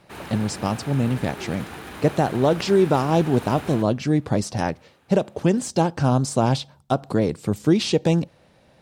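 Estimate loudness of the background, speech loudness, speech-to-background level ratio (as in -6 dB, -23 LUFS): -36.5 LUFS, -22.5 LUFS, 14.0 dB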